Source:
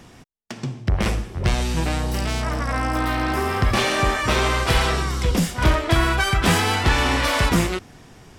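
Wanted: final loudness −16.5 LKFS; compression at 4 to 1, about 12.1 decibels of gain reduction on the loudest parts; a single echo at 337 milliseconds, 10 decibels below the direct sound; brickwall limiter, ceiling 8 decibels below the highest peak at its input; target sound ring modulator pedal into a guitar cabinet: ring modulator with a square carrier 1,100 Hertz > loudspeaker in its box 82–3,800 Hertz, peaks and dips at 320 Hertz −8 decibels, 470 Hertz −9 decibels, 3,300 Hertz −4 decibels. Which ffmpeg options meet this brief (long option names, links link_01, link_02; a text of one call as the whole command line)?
ffmpeg -i in.wav -af "acompressor=threshold=-28dB:ratio=4,alimiter=limit=-23dB:level=0:latency=1,aecho=1:1:337:0.316,aeval=exprs='val(0)*sgn(sin(2*PI*1100*n/s))':channel_layout=same,highpass=82,equalizer=frequency=320:width_type=q:width=4:gain=-8,equalizer=frequency=470:width_type=q:width=4:gain=-9,equalizer=frequency=3300:width_type=q:width=4:gain=-4,lowpass=frequency=3800:width=0.5412,lowpass=frequency=3800:width=1.3066,volume=15.5dB" out.wav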